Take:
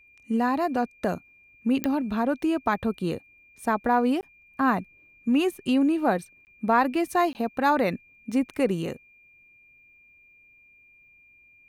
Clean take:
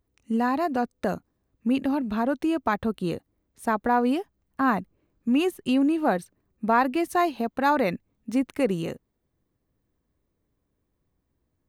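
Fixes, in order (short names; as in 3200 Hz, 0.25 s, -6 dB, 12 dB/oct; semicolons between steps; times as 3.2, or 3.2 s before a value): de-click; notch 2400 Hz, Q 30; interpolate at 4.21/6.45/7.33, 19 ms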